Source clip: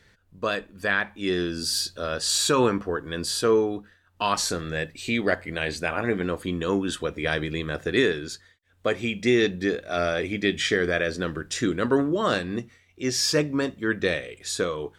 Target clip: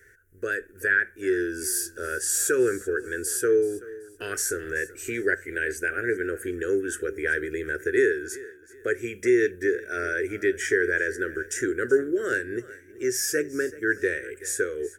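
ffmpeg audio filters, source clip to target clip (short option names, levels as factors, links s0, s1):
-filter_complex "[0:a]firequalizer=gain_entry='entry(110,0);entry(170,-16);entry(390,12);entry(630,-11);entry(1000,-26);entry(1500,13);entry(2500,-4);entry(4000,-17);entry(5800,4);entry(11000,15)':delay=0.05:min_phase=1,asplit=2[s0][s1];[s1]acompressor=threshold=0.0398:ratio=6,volume=1[s2];[s0][s2]amix=inputs=2:normalize=0,aecho=1:1:380|760:0.112|0.0325,volume=0.376"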